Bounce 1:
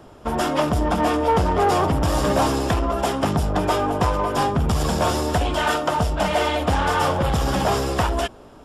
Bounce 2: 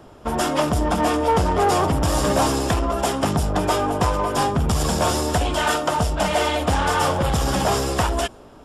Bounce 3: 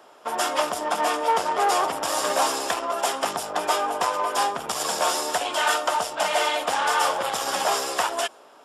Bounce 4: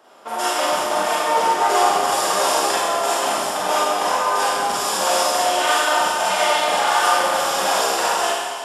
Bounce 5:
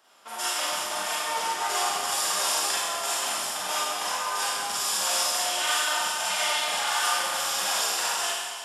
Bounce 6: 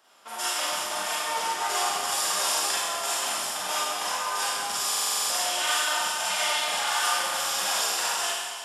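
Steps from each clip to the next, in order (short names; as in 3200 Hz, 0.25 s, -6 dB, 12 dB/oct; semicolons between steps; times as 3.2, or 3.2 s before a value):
dynamic EQ 8500 Hz, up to +6 dB, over -46 dBFS, Q 0.76
HPF 630 Hz 12 dB/oct
Schroeder reverb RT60 1.8 s, combs from 32 ms, DRR -8 dB; gain -3 dB
passive tone stack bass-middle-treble 5-5-5; gain +4 dB
stuck buffer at 4.88, samples 2048, times 8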